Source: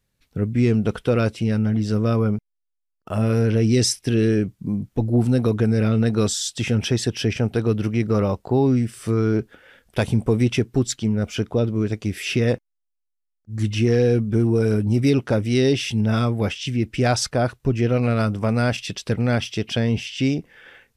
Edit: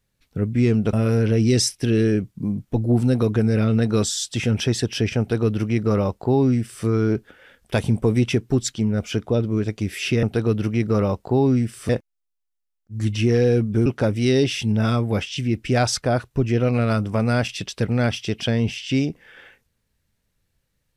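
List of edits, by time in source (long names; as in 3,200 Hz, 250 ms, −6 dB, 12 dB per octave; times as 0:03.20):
0:00.93–0:03.17: remove
0:07.43–0:09.09: duplicate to 0:12.47
0:14.44–0:15.15: remove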